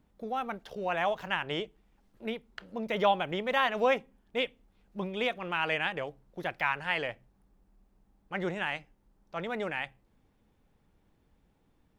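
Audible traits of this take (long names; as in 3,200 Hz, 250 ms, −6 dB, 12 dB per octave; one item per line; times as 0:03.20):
background noise floor −70 dBFS
spectral slope −2.0 dB per octave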